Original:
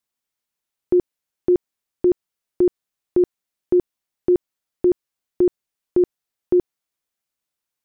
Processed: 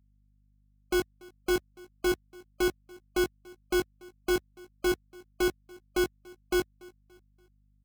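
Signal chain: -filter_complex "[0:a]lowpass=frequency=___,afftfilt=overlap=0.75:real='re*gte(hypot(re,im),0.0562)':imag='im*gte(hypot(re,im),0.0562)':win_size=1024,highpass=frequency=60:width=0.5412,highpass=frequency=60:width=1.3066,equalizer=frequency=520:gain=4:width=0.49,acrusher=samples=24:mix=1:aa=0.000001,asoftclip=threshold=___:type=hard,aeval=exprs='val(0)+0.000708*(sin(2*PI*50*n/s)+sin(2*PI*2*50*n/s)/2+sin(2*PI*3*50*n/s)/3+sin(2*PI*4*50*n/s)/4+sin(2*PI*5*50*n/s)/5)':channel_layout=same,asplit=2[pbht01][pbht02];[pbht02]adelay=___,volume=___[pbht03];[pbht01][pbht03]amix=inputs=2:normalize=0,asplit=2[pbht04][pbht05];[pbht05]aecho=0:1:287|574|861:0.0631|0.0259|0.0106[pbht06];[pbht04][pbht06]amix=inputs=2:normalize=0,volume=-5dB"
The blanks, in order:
1100, -20dB, 19, -4.5dB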